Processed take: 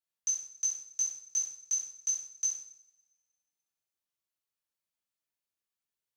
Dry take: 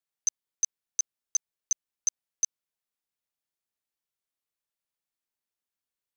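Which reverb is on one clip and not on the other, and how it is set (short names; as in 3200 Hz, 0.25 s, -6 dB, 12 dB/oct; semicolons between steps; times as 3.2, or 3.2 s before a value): two-slope reverb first 0.62 s, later 1.7 s, from -23 dB, DRR -5 dB; gain -8.5 dB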